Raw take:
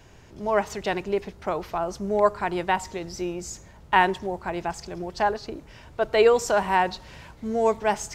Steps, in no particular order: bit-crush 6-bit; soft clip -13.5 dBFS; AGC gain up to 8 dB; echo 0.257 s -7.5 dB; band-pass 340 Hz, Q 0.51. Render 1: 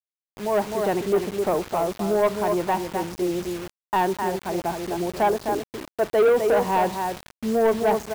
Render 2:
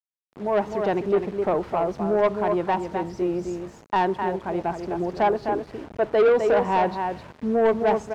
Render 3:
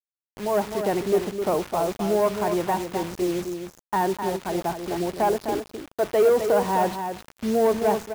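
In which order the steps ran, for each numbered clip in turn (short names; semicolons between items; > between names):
echo > AGC > band-pass > bit-crush > soft clip; AGC > echo > bit-crush > band-pass > soft clip; AGC > soft clip > band-pass > bit-crush > echo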